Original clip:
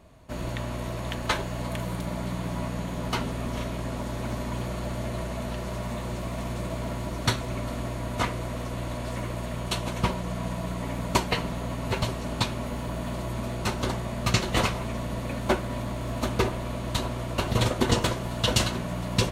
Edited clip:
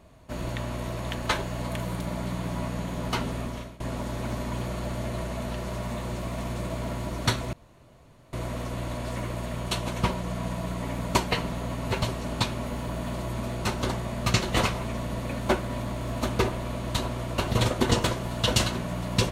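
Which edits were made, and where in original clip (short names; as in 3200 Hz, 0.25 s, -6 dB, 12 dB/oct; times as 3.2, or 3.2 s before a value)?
3.38–3.8 fade out, to -22 dB
7.53–8.33 room tone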